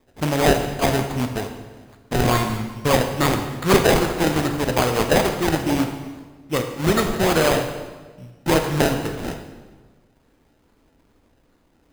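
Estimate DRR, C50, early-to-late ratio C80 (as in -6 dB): 5.0 dB, 7.5 dB, 8.5 dB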